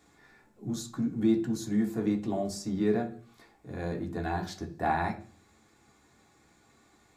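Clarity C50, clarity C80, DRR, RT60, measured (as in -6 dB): 14.0 dB, 18.5 dB, 1.0 dB, 0.45 s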